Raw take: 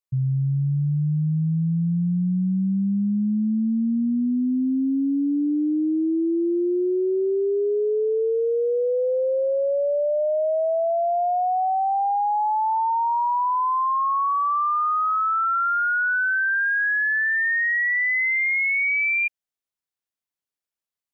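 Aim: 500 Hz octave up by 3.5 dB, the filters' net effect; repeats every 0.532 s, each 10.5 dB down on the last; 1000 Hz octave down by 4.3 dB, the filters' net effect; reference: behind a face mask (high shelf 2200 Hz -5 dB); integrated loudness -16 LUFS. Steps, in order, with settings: bell 500 Hz +6.5 dB; bell 1000 Hz -7 dB; high shelf 2200 Hz -5 dB; feedback echo 0.532 s, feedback 30%, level -10.5 dB; gain +5.5 dB

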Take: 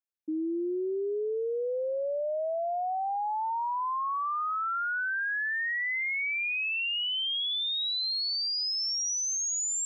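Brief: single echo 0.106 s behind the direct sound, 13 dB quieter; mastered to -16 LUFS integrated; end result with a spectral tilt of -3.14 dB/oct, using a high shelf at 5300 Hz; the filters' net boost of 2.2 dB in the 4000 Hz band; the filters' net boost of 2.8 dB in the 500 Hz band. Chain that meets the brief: bell 500 Hz +3.5 dB; bell 4000 Hz +6.5 dB; high shelf 5300 Hz -9 dB; echo 0.106 s -13 dB; gain +11.5 dB

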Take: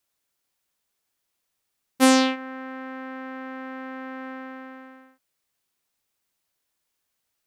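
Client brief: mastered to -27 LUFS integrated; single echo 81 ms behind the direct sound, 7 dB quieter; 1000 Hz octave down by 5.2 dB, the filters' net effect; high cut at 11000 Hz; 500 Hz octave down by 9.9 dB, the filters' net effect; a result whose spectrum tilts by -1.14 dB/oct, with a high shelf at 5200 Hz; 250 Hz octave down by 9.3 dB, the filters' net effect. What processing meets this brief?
LPF 11000 Hz; bell 250 Hz -7.5 dB; bell 500 Hz -8 dB; bell 1000 Hz -4 dB; high shelf 5200 Hz +5.5 dB; echo 81 ms -7 dB; gain -3.5 dB

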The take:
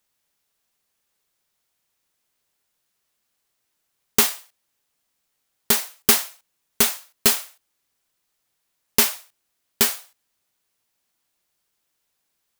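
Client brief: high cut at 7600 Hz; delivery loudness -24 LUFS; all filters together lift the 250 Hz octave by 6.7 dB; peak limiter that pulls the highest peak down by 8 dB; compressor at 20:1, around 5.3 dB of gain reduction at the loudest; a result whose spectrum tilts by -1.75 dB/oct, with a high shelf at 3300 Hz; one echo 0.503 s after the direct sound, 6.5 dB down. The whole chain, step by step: LPF 7600 Hz; bell 250 Hz +7.5 dB; high shelf 3300 Hz +7.5 dB; compressor 20:1, threshold -16 dBFS; limiter -8.5 dBFS; echo 0.503 s -6.5 dB; gain +5 dB

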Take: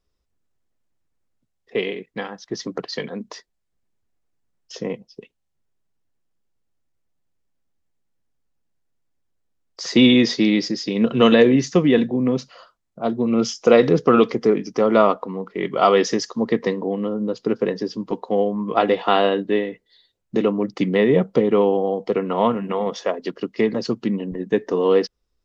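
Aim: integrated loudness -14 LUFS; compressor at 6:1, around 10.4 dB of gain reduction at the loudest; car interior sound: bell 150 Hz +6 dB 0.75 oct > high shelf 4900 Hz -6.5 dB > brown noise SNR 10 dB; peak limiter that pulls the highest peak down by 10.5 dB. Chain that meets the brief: compressor 6:1, threshold -20 dBFS; limiter -17.5 dBFS; bell 150 Hz +6 dB 0.75 oct; high shelf 4900 Hz -6.5 dB; brown noise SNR 10 dB; gain +13.5 dB

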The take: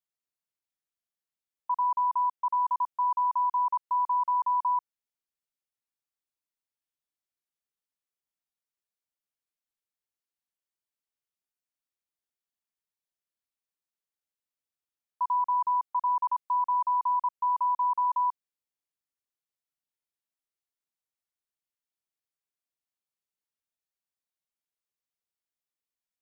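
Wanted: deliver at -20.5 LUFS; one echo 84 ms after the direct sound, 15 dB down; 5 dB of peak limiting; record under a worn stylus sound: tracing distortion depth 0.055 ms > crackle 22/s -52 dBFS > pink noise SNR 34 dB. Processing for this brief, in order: limiter -27 dBFS; echo 84 ms -15 dB; tracing distortion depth 0.055 ms; crackle 22/s -52 dBFS; pink noise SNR 34 dB; gain +11 dB

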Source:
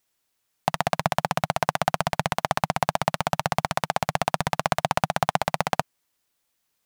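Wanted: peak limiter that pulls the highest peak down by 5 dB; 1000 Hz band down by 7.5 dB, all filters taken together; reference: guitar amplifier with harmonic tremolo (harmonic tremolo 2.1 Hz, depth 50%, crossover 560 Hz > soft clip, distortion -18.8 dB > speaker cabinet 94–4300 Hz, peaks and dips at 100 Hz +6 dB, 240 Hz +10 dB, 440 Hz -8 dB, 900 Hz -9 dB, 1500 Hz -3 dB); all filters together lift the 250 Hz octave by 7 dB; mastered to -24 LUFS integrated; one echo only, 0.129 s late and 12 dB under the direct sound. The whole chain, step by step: bell 250 Hz +5 dB; bell 1000 Hz -5 dB; limiter -7 dBFS; echo 0.129 s -12 dB; harmonic tremolo 2.1 Hz, depth 50%, crossover 560 Hz; soft clip -14.5 dBFS; speaker cabinet 94–4300 Hz, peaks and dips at 100 Hz +6 dB, 240 Hz +10 dB, 440 Hz -8 dB, 900 Hz -9 dB, 1500 Hz -3 dB; gain +11 dB

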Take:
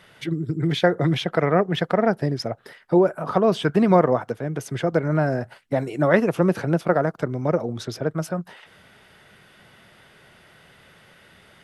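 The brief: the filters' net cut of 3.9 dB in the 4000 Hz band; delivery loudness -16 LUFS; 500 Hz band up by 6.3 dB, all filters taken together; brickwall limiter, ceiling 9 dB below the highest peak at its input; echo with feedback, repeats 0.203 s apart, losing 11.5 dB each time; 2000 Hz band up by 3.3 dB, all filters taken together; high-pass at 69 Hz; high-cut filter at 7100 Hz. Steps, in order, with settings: HPF 69 Hz; LPF 7100 Hz; bell 500 Hz +7.5 dB; bell 2000 Hz +5 dB; bell 4000 Hz -7 dB; limiter -8.5 dBFS; feedback echo 0.203 s, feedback 27%, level -11.5 dB; gain +4.5 dB

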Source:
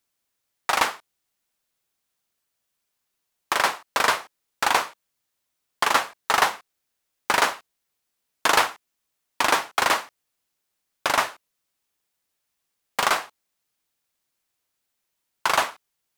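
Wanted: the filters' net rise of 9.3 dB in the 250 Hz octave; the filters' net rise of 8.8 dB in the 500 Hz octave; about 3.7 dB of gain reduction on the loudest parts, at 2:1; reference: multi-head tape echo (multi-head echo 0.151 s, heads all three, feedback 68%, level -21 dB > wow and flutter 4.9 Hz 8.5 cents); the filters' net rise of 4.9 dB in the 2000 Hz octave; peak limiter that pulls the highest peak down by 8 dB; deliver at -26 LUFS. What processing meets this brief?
bell 250 Hz +8.5 dB; bell 500 Hz +9 dB; bell 2000 Hz +5.5 dB; compressor 2:1, threshold -17 dBFS; limiter -10 dBFS; multi-head echo 0.151 s, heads all three, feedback 68%, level -21 dB; wow and flutter 4.9 Hz 8.5 cents; gain +1 dB

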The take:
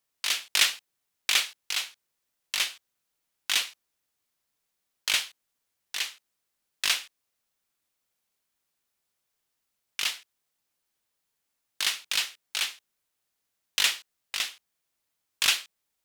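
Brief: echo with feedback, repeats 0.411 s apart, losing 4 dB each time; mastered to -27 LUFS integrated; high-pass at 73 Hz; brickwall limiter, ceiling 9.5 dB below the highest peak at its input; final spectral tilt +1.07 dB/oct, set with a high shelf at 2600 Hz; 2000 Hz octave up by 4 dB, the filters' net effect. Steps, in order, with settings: HPF 73 Hz; bell 2000 Hz +8 dB; high shelf 2600 Hz -5.5 dB; limiter -15.5 dBFS; feedback echo 0.411 s, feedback 63%, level -4 dB; gain +4 dB

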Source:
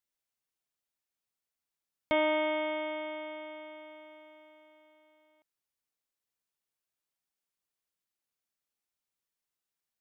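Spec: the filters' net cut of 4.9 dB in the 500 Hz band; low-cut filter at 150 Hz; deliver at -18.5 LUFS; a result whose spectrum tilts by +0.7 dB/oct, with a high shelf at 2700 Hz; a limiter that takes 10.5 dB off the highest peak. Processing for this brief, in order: HPF 150 Hz; bell 500 Hz -6.5 dB; high shelf 2700 Hz -3.5 dB; gain +23 dB; limiter -7.5 dBFS

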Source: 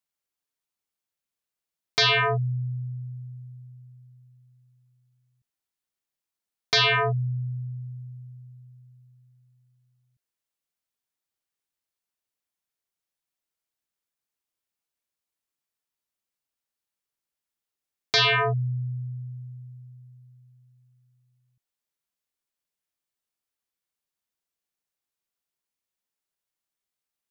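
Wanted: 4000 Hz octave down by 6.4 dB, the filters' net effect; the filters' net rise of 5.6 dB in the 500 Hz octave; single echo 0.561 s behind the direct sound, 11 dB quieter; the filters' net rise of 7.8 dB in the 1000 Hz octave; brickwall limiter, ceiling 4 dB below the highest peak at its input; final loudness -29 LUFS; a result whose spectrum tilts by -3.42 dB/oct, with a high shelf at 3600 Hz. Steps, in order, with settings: bell 500 Hz +4.5 dB; bell 1000 Hz +9 dB; high shelf 3600 Hz -4.5 dB; bell 4000 Hz -6 dB; limiter -14.5 dBFS; echo 0.561 s -11 dB; gain -3.5 dB

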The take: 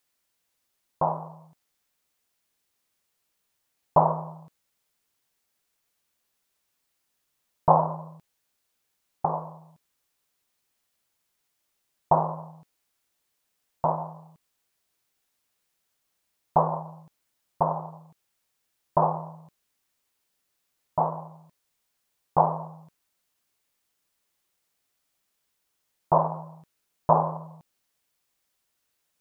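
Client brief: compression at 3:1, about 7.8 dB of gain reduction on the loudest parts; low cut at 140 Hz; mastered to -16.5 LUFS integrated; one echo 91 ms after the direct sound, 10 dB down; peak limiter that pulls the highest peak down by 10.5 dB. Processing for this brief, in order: HPF 140 Hz; compressor 3:1, threshold -24 dBFS; limiter -22 dBFS; echo 91 ms -10 dB; gain +21 dB

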